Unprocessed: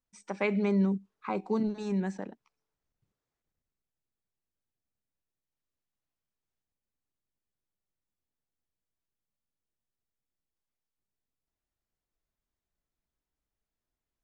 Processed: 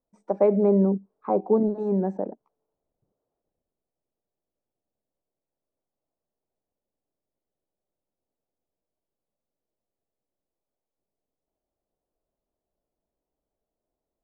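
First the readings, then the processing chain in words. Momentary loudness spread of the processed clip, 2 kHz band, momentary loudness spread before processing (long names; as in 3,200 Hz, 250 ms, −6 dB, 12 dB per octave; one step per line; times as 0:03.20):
12 LU, below −10 dB, 15 LU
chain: drawn EQ curve 110 Hz 0 dB, 620 Hz +14 dB, 2,600 Hz −20 dB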